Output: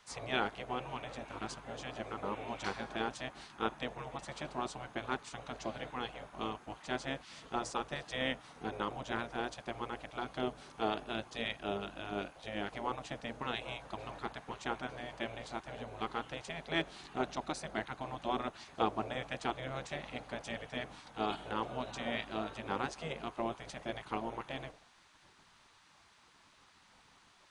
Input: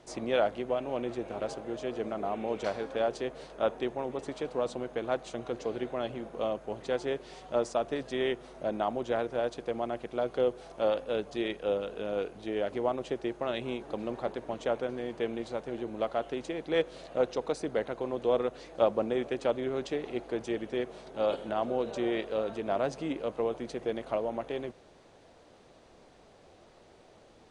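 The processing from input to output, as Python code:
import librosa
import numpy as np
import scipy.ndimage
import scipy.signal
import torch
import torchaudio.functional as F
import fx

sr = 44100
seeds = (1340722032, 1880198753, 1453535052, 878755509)

y = fx.hum_notches(x, sr, base_hz=60, count=6)
y = fx.spec_gate(y, sr, threshold_db=-10, keep='weak')
y = F.gain(torch.from_numpy(y), 1.0).numpy()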